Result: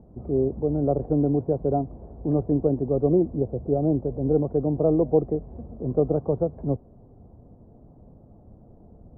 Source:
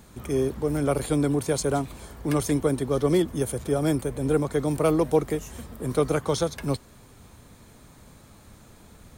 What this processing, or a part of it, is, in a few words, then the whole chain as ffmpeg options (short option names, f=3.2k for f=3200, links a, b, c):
under water: -filter_complex "[0:a]asettb=1/sr,asplit=3[a][b][c];[a]atrim=end=3.364[d];[b]atrim=start=3.36:end=4.03,asetpts=PTS-STARTPTS,afade=t=in:d=0.004:c=qsin,afade=t=out:st=0.666:d=0.004:c=qsin,lowpass=1.2k[e];[c]atrim=start=4.026[f];[d][e]acrossfade=d=0.004:c1=hsin:c2=qsin[g];[g][f]acrossfade=d=0.004:c1=qsin:c2=hsin,lowpass=f=660:w=0.5412,lowpass=f=660:w=1.3066,equalizer=f=720:t=o:w=0.21:g=6,volume=1.5dB"